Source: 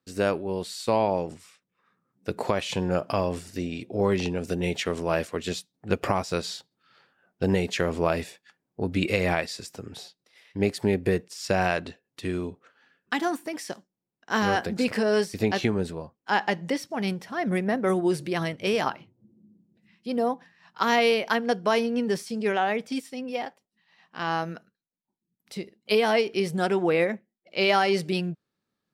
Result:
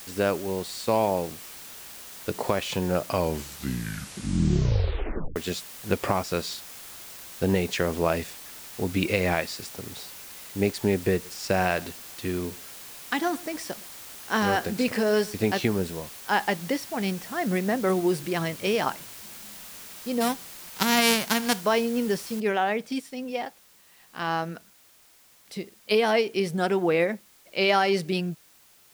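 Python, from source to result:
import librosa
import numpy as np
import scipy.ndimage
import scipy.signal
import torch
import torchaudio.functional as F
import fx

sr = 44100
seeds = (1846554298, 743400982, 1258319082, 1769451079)

y = fx.echo_single(x, sr, ms=113, db=-21.5, at=(11.24, 15.54), fade=0.02)
y = fx.envelope_flatten(y, sr, power=0.3, at=(20.2, 21.6), fade=0.02)
y = fx.noise_floor_step(y, sr, seeds[0], at_s=22.4, before_db=-43, after_db=-57, tilt_db=0.0)
y = fx.edit(y, sr, fx.tape_stop(start_s=3.06, length_s=2.3), tone=tone)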